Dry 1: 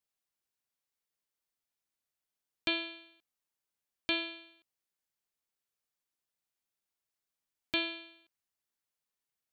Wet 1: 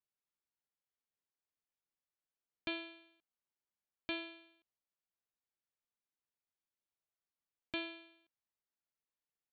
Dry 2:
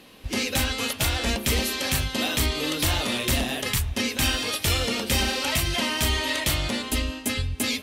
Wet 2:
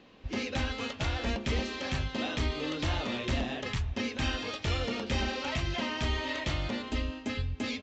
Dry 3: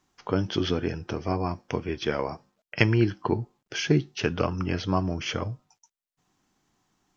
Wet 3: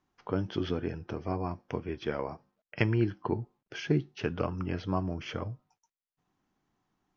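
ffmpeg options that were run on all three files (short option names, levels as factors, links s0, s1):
-af "aemphasis=mode=reproduction:type=75fm,aresample=16000,aresample=44100,volume=0.501"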